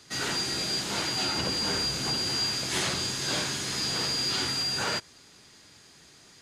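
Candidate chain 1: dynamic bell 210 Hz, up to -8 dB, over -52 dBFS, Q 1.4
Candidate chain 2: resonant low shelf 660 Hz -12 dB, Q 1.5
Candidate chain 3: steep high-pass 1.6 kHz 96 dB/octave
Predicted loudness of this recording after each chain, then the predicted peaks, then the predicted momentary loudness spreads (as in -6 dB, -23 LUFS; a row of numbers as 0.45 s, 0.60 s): -27.5 LUFS, -27.0 LUFS, -27.5 LUFS; -17.5 dBFS, -16.5 dBFS, -17.0 dBFS; 3 LU, 2 LU, 3 LU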